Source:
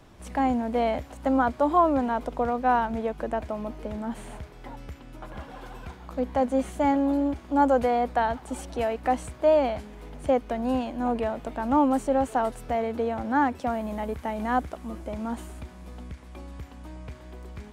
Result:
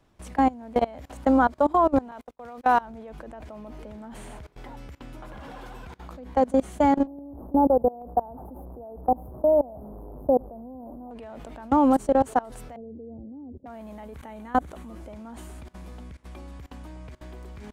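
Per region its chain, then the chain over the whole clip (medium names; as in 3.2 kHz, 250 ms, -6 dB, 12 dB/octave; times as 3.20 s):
2.11–2.81 s: gate -32 dBFS, range -33 dB + tilt EQ +2 dB/octave
7.07–11.11 s: one-bit delta coder 64 kbps, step -32.5 dBFS + inverse Chebyshev band-stop 2.2–7.2 kHz, stop band 60 dB + feedback delay 92 ms, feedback 53%, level -24 dB
12.76–13.66 s: inverse Chebyshev low-pass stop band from 2 kHz, stop band 70 dB + tape noise reduction on one side only decoder only
14.17–14.87 s: peaking EQ 5.1 kHz -9.5 dB 0.22 oct + band-stop 700 Hz, Q 11
whole clip: level held to a coarse grid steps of 23 dB; dynamic bell 2.4 kHz, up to -4 dB, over -47 dBFS, Q 1.2; trim +5.5 dB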